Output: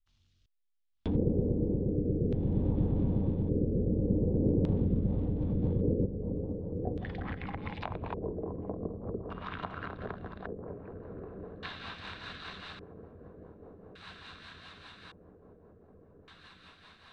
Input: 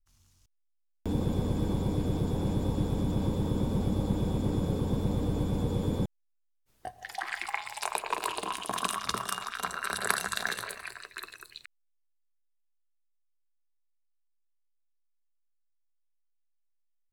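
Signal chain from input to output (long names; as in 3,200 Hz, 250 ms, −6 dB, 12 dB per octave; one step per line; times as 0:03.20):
on a send: feedback delay with all-pass diffusion 1,167 ms, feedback 71%, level −9.5 dB
on the sum: treble cut that deepens with the level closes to 540 Hz, closed at −27.5 dBFS
in parallel at −9.5 dB: dead-zone distortion −45 dBFS
on the sum: auto-filter low-pass square 0.43 Hz 470–3,600 Hz
rotating-speaker cabinet horn 0.6 Hz, later 5 Hz, at 0:04.65
level −2 dB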